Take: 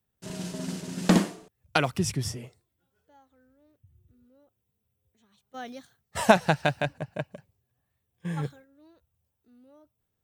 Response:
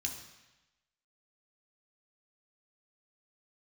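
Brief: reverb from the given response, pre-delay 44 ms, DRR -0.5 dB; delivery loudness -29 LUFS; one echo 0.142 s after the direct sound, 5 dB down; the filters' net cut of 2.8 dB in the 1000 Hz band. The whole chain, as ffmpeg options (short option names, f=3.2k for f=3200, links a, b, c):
-filter_complex "[0:a]equalizer=f=1k:t=o:g=-4,aecho=1:1:142:0.562,asplit=2[a][b];[1:a]atrim=start_sample=2205,adelay=44[c];[b][c]afir=irnorm=-1:irlink=0,volume=0dB[d];[a][d]amix=inputs=2:normalize=0,volume=-5dB"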